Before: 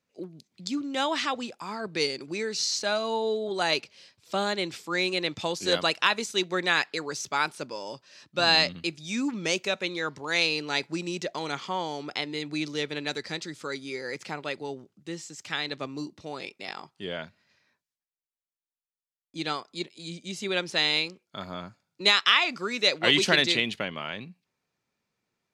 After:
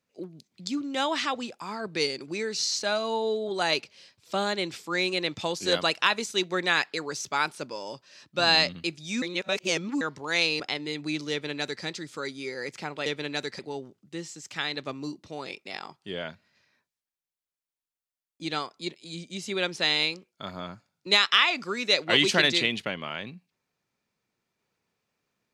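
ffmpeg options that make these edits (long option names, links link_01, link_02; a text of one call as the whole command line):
ffmpeg -i in.wav -filter_complex "[0:a]asplit=6[link_01][link_02][link_03][link_04][link_05][link_06];[link_01]atrim=end=9.222[link_07];[link_02]atrim=start=9.218:end=10.012,asetpts=PTS-STARTPTS,areverse[link_08];[link_03]atrim=start=10.008:end=10.602[link_09];[link_04]atrim=start=12.068:end=14.532[link_10];[link_05]atrim=start=12.778:end=13.312[link_11];[link_06]atrim=start=14.528[link_12];[link_07][link_08]acrossfade=duration=0.004:curve1=hsin:curve2=hsin[link_13];[link_13][link_09]acrossfade=duration=0.004:curve1=hsin:curve2=hsin[link_14];[link_14][link_10]acrossfade=duration=0.004:curve1=hsin:curve2=hsin[link_15];[link_15][link_11]acrossfade=duration=0.004:curve1=hsin:curve2=hsin[link_16];[link_16][link_12]acrossfade=duration=0.004:curve1=hsin:curve2=hsin" out.wav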